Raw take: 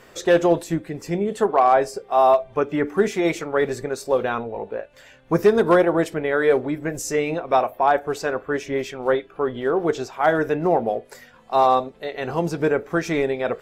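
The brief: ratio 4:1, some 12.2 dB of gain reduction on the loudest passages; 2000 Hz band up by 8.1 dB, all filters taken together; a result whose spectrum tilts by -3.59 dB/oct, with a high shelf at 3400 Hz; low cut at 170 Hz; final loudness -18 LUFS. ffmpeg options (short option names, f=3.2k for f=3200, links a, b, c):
-af "highpass=170,equalizer=f=2k:t=o:g=9,highshelf=f=3.4k:g=5.5,acompressor=threshold=-25dB:ratio=4,volume=10.5dB"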